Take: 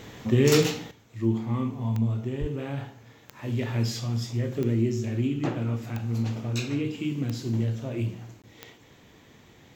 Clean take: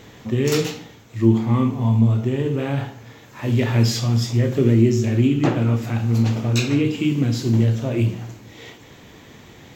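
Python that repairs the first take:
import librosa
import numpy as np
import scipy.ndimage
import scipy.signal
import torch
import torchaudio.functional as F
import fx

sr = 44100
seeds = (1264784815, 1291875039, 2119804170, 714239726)

y = fx.fix_declick_ar(x, sr, threshold=10.0)
y = fx.highpass(y, sr, hz=140.0, slope=24, at=(2.4, 2.52), fade=0.02)
y = fx.fix_interpolate(y, sr, at_s=(8.42,), length_ms=17.0)
y = fx.fix_level(y, sr, at_s=0.91, step_db=9.5)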